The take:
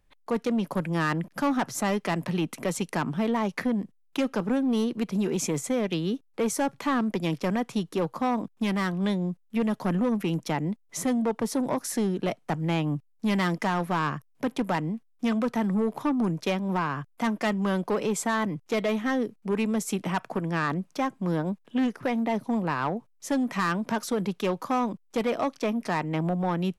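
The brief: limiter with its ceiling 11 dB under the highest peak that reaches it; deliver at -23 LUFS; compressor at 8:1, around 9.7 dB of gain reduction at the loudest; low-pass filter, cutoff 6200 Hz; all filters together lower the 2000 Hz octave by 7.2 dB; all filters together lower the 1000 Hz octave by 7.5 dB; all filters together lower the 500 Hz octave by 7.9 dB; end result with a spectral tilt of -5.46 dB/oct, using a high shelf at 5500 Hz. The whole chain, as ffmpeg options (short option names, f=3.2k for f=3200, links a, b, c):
-af "lowpass=6.2k,equalizer=f=500:t=o:g=-8.5,equalizer=f=1k:t=o:g=-5,equalizer=f=2k:t=o:g=-7.5,highshelf=f=5.5k:g=5,acompressor=threshold=-35dB:ratio=8,volume=19.5dB,alimiter=limit=-15.5dB:level=0:latency=1"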